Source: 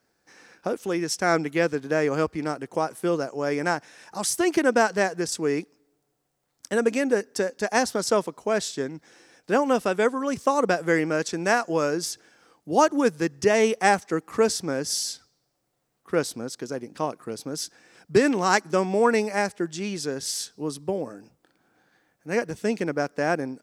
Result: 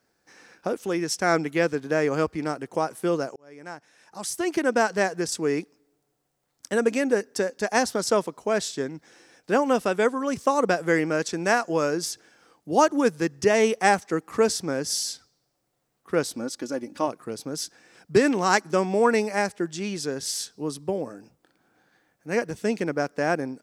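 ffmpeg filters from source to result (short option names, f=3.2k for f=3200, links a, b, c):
-filter_complex "[0:a]asettb=1/sr,asplit=3[a][b][c];[a]atrim=end=16.354[d];[b]atrim=start=16.35:end=17.08,asetpts=PTS-STARTPTS,afade=t=in:d=0.004:c=qsin,afade=t=out:st=0.726:d=0.004:c=qsin,aecho=1:1:3.5:0.66,atrim=end_sample=32193[e];[c]atrim=start=17.076[f];[d][e]acrossfade=d=0.004:c1=hsin:c2=qsin[g];[g][f]acrossfade=d=0.004:c1=qsin:c2=hsin,asplit=2[h][i];[h]atrim=end=3.36,asetpts=PTS-STARTPTS,afade=t=out:st=3.356:d=0.004:c=hsin[j];[i]atrim=start=3.36,asetpts=PTS-STARTPTS,afade=t=in:d=1.72[k];[j][k]concat=n=2:v=0:a=1"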